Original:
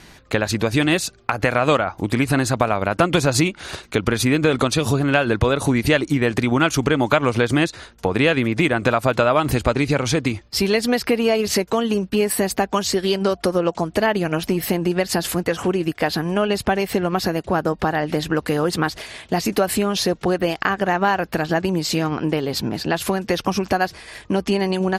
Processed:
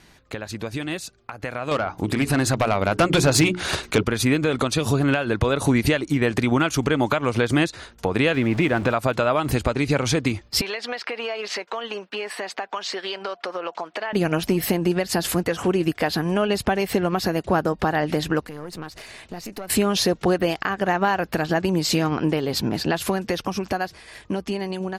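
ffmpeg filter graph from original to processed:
-filter_complex "[0:a]asettb=1/sr,asplit=3[s0][s1][s2];[s0]atrim=end=1.714[s3];[s1]atrim=start=1.71:end=4.03,asetpts=PTS-STARTPTS,afade=t=in:d=0.004:c=qsin,afade=t=out:st=2.316:d=0.004:c=qsin,bandreject=f=60:t=h:w=6,bandreject=f=120:t=h:w=6,bandreject=f=180:t=h:w=6,bandreject=f=240:t=h:w=6,bandreject=f=300:t=h:w=6,bandreject=f=360:t=h:w=6,bandreject=f=420:t=h:w=6,aeval=exprs='0.631*sin(PI/2*1.78*val(0)/0.631)':c=same[s4];[s2]atrim=start=4.026[s5];[s3][s4]acrossfade=d=0.004:c1=hsin:c2=qsin[s6];[s6][s5]acrossfade=d=0.004:c1=qsin:c2=hsin,asettb=1/sr,asplit=3[s7][s8][s9];[s7]atrim=end=8.344[s10];[s8]atrim=start=8.34:end=8.92,asetpts=PTS-STARTPTS,afade=t=in:d=0.004:c=qsin,afade=t=out:st=0.576:d=0.004:c=qsin,aeval=exprs='val(0)+0.5*0.0398*sgn(val(0))':c=same,lowpass=f=2800:p=1[s11];[s9]atrim=start=8.916[s12];[s10][s11]acrossfade=d=0.004:c1=hsin:c2=qsin[s13];[s13][s12]acrossfade=d=0.004:c1=qsin:c2=hsin,asettb=1/sr,asplit=3[s14][s15][s16];[s14]atrim=end=10.614[s17];[s15]atrim=start=10.61:end=14.13,asetpts=PTS-STARTPTS,afade=t=in:d=0.004:c=qsin,afade=t=out:st=3.516:d=0.004:c=qsin,highpass=730,lowpass=3500,acompressor=threshold=0.0562:ratio=6:attack=3.2:release=140:knee=1:detection=peak[s18];[s16]atrim=start=14.126[s19];[s17][s18]acrossfade=d=0.004:c1=hsin:c2=qsin[s20];[s20][s19]acrossfade=d=0.004:c1=qsin:c2=hsin,asettb=1/sr,asplit=3[s21][s22][s23];[s21]atrim=end=18.404[s24];[s22]atrim=start=18.4:end=19.7,asetpts=PTS-STARTPTS,afade=t=in:d=0.004:c=qsin,afade=t=out:st=1.296:d=0.004:c=qsin,bandreject=f=3300:w=9.8,acompressor=threshold=0.0178:ratio=2.5:attack=3.2:release=140:knee=1:detection=peak,aeval=exprs='(tanh(17.8*val(0)+0.7)-tanh(0.7))/17.8':c=same[s25];[s23]atrim=start=19.696[s26];[s24][s25]acrossfade=d=0.004:c1=hsin:c2=qsin[s27];[s27][s26]acrossfade=d=0.004:c1=qsin:c2=hsin,alimiter=limit=0.282:level=0:latency=1:release=456,dynaudnorm=f=710:g=7:m=3.76,volume=0.422"

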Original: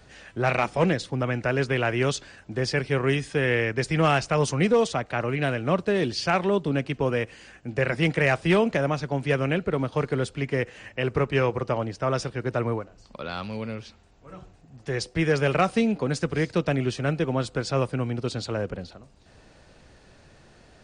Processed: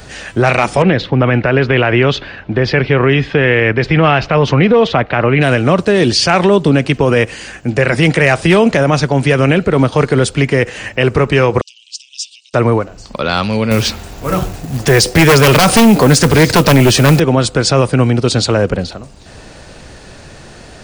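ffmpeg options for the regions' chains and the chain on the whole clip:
-filter_complex "[0:a]asettb=1/sr,asplit=3[s0][s1][s2];[s0]atrim=end=0.824[s3];[s1]atrim=start=0.82:end=5.41,asetpts=PTS-STARTPTS,afade=t=in:d=0.004:c=qsin,afade=t=out:st=4.586:d=0.004:c=qsin,lowpass=f=3500:w=0.5412,lowpass=f=3500:w=1.3066,acompressor=threshold=0.0708:ratio=4:attack=3.2:release=140:knee=1:detection=peak[s4];[s2]atrim=start=5.406[s5];[s3][s4]acrossfade=d=0.004:c1=hsin:c2=qsin[s6];[s6][s5]acrossfade=d=0.004:c1=qsin:c2=hsin,asettb=1/sr,asplit=3[s7][s8][s9];[s7]atrim=end=11.614[s10];[s8]atrim=start=11.61:end=12.54,asetpts=PTS-STARTPTS,afade=t=in:d=0.004:c=qsin,afade=t=out:st=0.926:d=0.004:c=qsin,acompressor=threshold=0.0224:ratio=6:attack=3.2:release=140:knee=1:detection=peak,asuperpass=centerf=5000:order=20:qfactor=0.82[s11];[s9]atrim=start=12.536[s12];[s10][s11]acrossfade=d=0.004:c1=hsin:c2=qsin[s13];[s13][s12]acrossfade=d=0.004:c1=qsin:c2=hsin,asettb=1/sr,asplit=3[s14][s15][s16];[s14]atrim=end=13.714[s17];[s15]atrim=start=13.71:end=17.2,asetpts=PTS-STARTPTS,afade=t=in:d=0.004:c=qsin,afade=t=out:st=3.486:d=0.004:c=qsin,acrusher=bits=5:mode=log:mix=0:aa=0.000001,aeval=exprs='0.251*sin(PI/2*2.24*val(0)/0.251)':c=same[s18];[s16]atrim=start=17.196[s19];[s17][s18]acrossfade=d=0.004:c1=hsin:c2=qsin[s20];[s20][s19]acrossfade=d=0.004:c1=qsin:c2=hsin,highshelf=f=6900:g=7,alimiter=level_in=8.41:limit=0.891:release=50:level=0:latency=1,volume=0.891"

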